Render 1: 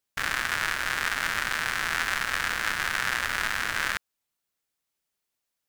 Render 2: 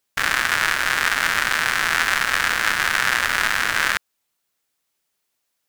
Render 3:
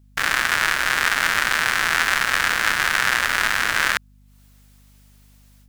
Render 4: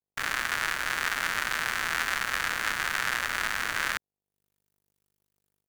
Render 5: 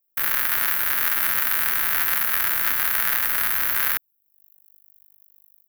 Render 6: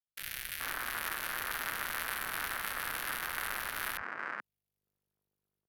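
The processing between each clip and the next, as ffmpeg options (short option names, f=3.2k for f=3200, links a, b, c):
-af "lowshelf=f=160:g=-5.5,volume=8dB"
-af "dynaudnorm=f=170:g=3:m=16.5dB,aeval=exprs='val(0)+0.00316*(sin(2*PI*50*n/s)+sin(2*PI*2*50*n/s)/2+sin(2*PI*3*50*n/s)/3+sin(2*PI*4*50*n/s)/4+sin(2*PI*5*50*n/s)/5)':c=same,volume=-1dB"
-filter_complex "[0:a]acrossover=split=160|1400|6700[a][b][c][d];[c]aeval=exprs='sgn(val(0))*max(abs(val(0))-0.02,0)':c=same[e];[a][b][e][d]amix=inputs=4:normalize=0,acrusher=bits=6:mix=0:aa=0.5,volume=-8.5dB"
-af "aexciter=amount=9.2:drive=8.7:freq=11k,volume=1dB"
-filter_complex "[0:a]acrossover=split=160|2000[a][b][c];[a]adelay=50[d];[b]adelay=430[e];[d][e][c]amix=inputs=3:normalize=0,adynamicsmooth=sensitivity=3.5:basefreq=4.2k,volume=-7dB"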